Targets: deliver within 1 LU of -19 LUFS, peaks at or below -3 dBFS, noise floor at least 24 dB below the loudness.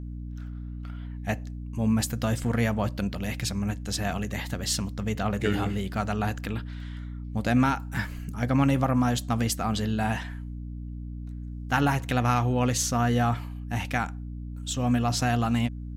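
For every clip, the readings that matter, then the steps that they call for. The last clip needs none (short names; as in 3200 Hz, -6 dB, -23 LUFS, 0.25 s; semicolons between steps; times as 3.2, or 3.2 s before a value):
hum 60 Hz; harmonics up to 300 Hz; hum level -34 dBFS; loudness -27.5 LUFS; peak -10.0 dBFS; loudness target -19.0 LUFS
-> de-hum 60 Hz, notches 5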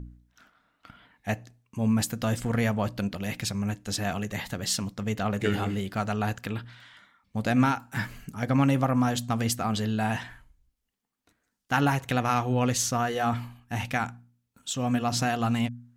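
hum none; loudness -28.0 LUFS; peak -9.5 dBFS; loudness target -19.0 LUFS
-> gain +9 dB; limiter -3 dBFS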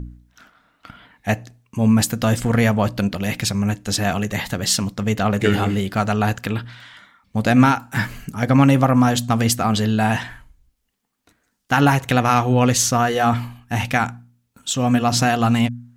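loudness -19.0 LUFS; peak -3.0 dBFS; noise floor -69 dBFS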